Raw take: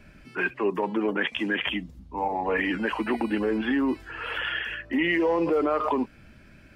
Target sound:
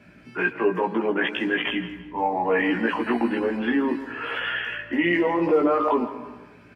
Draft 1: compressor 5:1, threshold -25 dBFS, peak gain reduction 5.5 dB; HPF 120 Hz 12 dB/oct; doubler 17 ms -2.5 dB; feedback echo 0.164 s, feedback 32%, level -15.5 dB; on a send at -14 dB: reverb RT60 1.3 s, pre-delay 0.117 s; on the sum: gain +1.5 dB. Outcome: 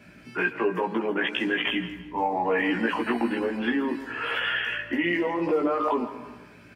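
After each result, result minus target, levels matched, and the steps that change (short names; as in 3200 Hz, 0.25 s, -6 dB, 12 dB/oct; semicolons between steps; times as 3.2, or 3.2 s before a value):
8000 Hz band +7.0 dB; compressor: peak gain reduction +5.5 dB
add after HPF: high shelf 4000 Hz -8 dB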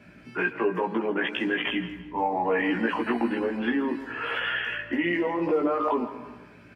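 compressor: peak gain reduction +5.5 dB
remove: compressor 5:1, threshold -25 dBFS, peak gain reduction 5.5 dB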